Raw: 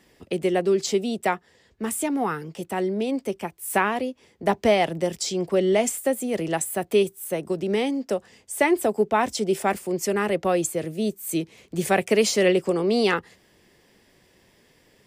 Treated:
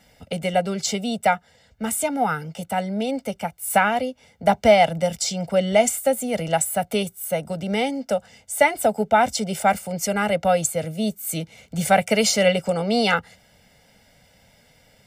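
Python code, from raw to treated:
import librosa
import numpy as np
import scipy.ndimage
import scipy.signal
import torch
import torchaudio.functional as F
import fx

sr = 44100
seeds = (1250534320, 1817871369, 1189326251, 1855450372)

y = x + 0.97 * np.pad(x, (int(1.4 * sr / 1000.0), 0))[:len(x)]
y = F.gain(torch.from_numpy(y), 1.0).numpy()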